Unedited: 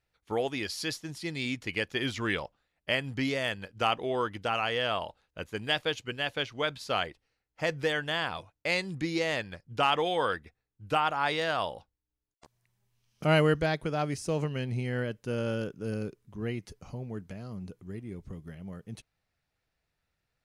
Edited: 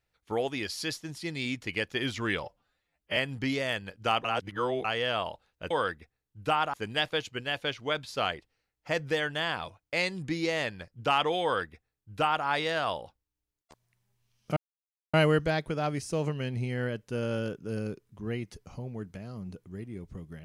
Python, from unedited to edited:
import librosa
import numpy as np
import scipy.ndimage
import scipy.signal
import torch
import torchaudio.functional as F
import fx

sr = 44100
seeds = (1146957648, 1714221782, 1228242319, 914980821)

y = fx.edit(x, sr, fx.stretch_span(start_s=2.43, length_s=0.49, factor=1.5),
    fx.reverse_span(start_s=4.0, length_s=0.6),
    fx.duplicate(start_s=10.15, length_s=1.03, to_s=5.46),
    fx.insert_silence(at_s=13.29, length_s=0.57), tone=tone)